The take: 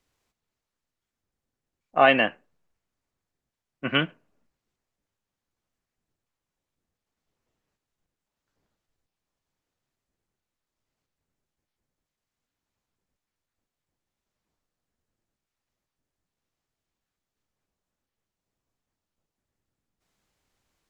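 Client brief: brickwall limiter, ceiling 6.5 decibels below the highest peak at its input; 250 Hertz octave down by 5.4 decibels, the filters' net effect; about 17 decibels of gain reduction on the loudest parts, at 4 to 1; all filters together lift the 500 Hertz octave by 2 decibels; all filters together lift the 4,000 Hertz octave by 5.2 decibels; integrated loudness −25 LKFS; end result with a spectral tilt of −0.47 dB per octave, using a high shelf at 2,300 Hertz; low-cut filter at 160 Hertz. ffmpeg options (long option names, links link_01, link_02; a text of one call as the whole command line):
ffmpeg -i in.wav -af "highpass=160,equalizer=frequency=250:width_type=o:gain=-6.5,equalizer=frequency=500:width_type=o:gain=3.5,highshelf=frequency=2300:gain=4.5,equalizer=frequency=4000:width_type=o:gain=4,acompressor=threshold=-31dB:ratio=4,volume=11.5dB,alimiter=limit=-10.5dB:level=0:latency=1" out.wav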